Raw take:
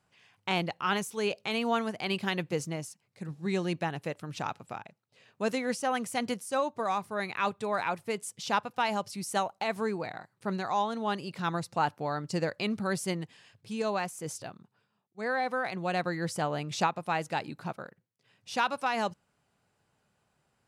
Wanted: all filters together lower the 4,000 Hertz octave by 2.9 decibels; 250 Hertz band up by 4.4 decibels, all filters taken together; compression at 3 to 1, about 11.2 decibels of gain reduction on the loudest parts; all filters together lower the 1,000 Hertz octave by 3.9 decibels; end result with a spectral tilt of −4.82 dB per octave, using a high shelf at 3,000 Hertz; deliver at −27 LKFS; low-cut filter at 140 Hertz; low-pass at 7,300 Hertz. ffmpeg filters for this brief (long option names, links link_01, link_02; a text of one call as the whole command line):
ffmpeg -i in.wav -af "highpass=140,lowpass=7300,equalizer=frequency=250:width_type=o:gain=7,equalizer=frequency=1000:width_type=o:gain=-6,highshelf=frequency=3000:gain=6,equalizer=frequency=4000:width_type=o:gain=-8,acompressor=threshold=-39dB:ratio=3,volume=14dB" out.wav